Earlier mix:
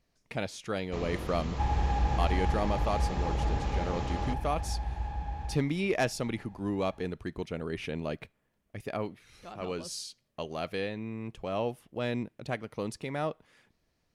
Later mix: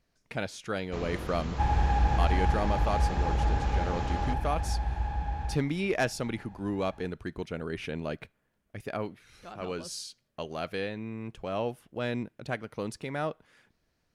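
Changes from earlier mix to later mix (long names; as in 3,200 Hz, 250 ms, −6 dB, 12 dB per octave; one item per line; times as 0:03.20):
second sound +3.5 dB
master: add parametric band 1,500 Hz +5.5 dB 0.26 octaves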